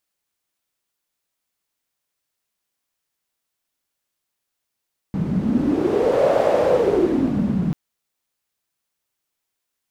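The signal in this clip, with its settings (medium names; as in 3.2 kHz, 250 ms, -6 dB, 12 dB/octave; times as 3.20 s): wind-like swept noise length 2.59 s, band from 180 Hz, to 590 Hz, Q 6.3, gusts 1, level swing 4 dB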